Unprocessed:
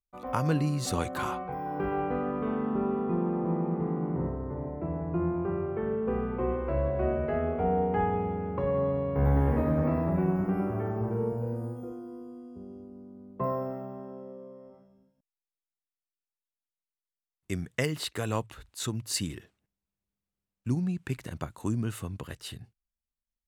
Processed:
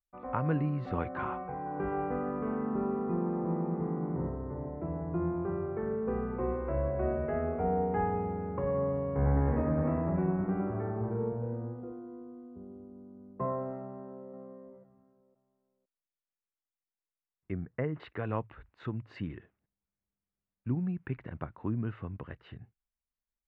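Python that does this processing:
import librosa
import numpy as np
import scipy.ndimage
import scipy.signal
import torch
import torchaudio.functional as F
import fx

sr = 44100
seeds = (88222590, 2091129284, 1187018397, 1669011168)

y = fx.echo_throw(x, sr, start_s=13.82, length_s=0.5, ms=510, feedback_pct=25, wet_db=-10.5)
y = fx.lowpass(y, sr, hz=1400.0, slope=12, at=(17.52, 18.0))
y = scipy.signal.sosfilt(scipy.signal.butter(4, 2200.0, 'lowpass', fs=sr, output='sos'), y)
y = F.gain(torch.from_numpy(y), -3.0).numpy()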